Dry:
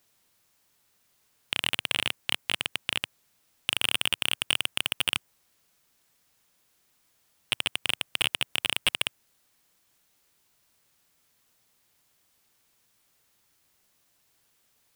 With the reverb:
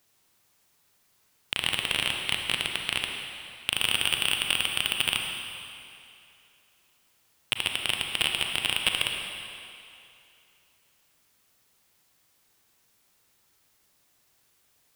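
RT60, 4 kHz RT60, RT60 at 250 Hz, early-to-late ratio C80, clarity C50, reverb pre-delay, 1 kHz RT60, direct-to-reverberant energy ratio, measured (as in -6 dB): 2.7 s, 2.4 s, 2.4 s, 4.0 dB, 3.0 dB, 33 ms, 2.7 s, 2.0 dB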